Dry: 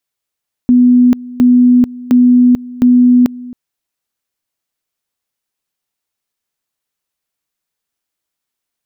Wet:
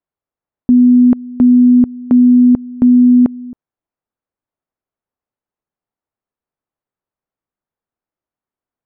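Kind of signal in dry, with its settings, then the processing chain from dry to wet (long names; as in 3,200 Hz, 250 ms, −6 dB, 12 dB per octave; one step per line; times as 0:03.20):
tone at two levels in turn 247 Hz −4 dBFS, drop 20.5 dB, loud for 0.44 s, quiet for 0.27 s, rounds 4
low-pass filter 1,100 Hz 12 dB per octave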